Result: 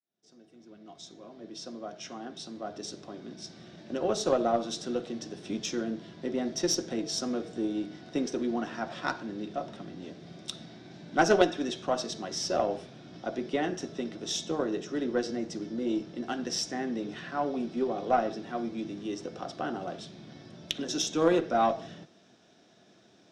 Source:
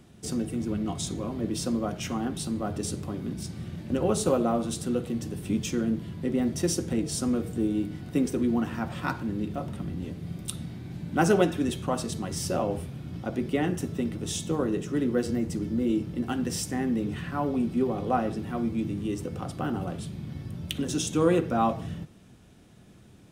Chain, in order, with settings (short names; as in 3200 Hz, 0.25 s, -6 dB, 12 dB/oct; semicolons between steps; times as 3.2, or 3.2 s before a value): opening faded in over 4.73 s; speaker cabinet 250–6900 Hz, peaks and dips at 360 Hz +3 dB, 660 Hz +9 dB, 1600 Hz +5 dB, 3700 Hz +7 dB, 5500 Hz +10 dB; added harmonics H 2 -18 dB, 3 -18 dB, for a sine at -6.5 dBFS